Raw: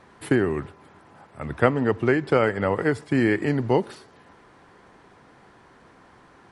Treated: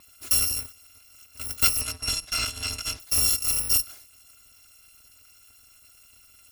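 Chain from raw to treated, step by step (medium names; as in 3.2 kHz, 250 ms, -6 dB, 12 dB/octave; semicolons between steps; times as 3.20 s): bit-reversed sample order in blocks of 256 samples; 1.81–3.00 s: low-pass 7.1 kHz 12 dB/octave; trim -2 dB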